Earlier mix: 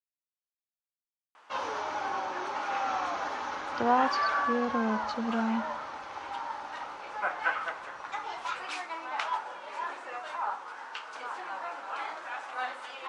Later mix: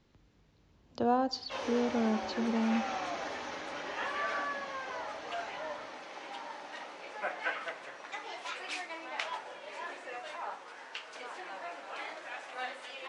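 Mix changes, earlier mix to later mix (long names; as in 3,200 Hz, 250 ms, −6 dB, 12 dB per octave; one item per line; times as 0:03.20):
speech: entry −2.80 s
master: add flat-topped bell 1,100 Hz −8.5 dB 1.1 octaves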